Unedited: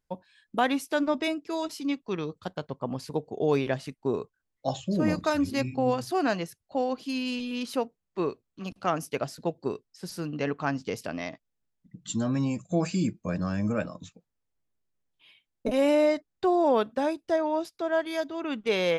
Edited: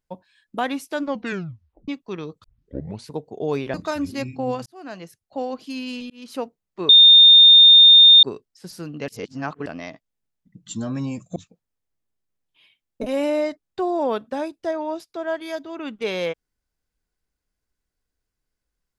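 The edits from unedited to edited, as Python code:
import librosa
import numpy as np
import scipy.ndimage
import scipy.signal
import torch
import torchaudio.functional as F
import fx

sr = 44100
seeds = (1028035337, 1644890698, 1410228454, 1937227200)

y = fx.edit(x, sr, fx.tape_stop(start_s=1.04, length_s=0.84),
    fx.tape_start(start_s=2.44, length_s=0.63),
    fx.cut(start_s=3.74, length_s=1.39),
    fx.fade_in_span(start_s=6.05, length_s=0.71),
    fx.fade_in_span(start_s=7.49, length_s=0.28),
    fx.bleep(start_s=8.28, length_s=1.34, hz=3640.0, db=-6.0),
    fx.reverse_span(start_s=10.47, length_s=0.58),
    fx.cut(start_s=12.75, length_s=1.26), tone=tone)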